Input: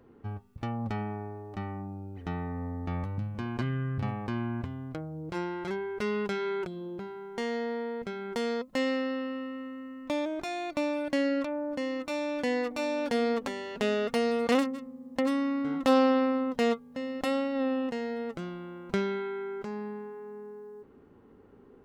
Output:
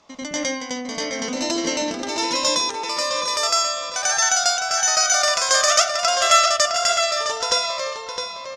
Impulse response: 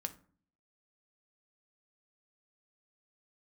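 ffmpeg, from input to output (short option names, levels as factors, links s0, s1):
-filter_complex "[0:a]asetrate=112455,aresample=44100,lowpass=f=6100:t=q:w=4.4,highshelf=f=3100:g=9.5,asplit=2[s0][s1];[s1]adelay=661,lowpass=f=4100:p=1,volume=0.562,asplit=2[s2][s3];[s3]adelay=661,lowpass=f=4100:p=1,volume=0.25,asplit=2[s4][s5];[s5]adelay=661,lowpass=f=4100:p=1,volume=0.25[s6];[s0][s2][s4][s6]amix=inputs=4:normalize=0,asplit=2[s7][s8];[1:a]atrim=start_sample=2205,adelay=92[s9];[s8][s9]afir=irnorm=-1:irlink=0,volume=2.37[s10];[s7][s10]amix=inputs=2:normalize=0,volume=0.794"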